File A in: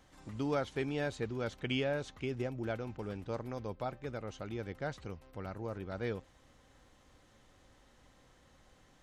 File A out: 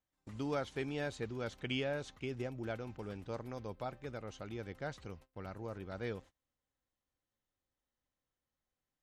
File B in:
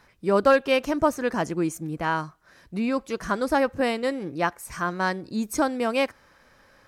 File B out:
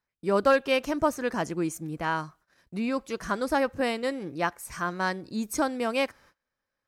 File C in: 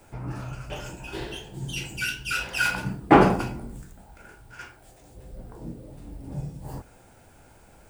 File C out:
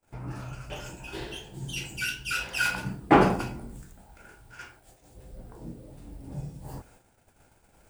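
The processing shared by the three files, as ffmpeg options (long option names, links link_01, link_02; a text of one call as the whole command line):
ffmpeg -i in.wav -af "highshelf=frequency=2000:gain=2.5,agate=range=-26dB:threshold=-51dB:ratio=16:detection=peak,volume=-3.5dB" out.wav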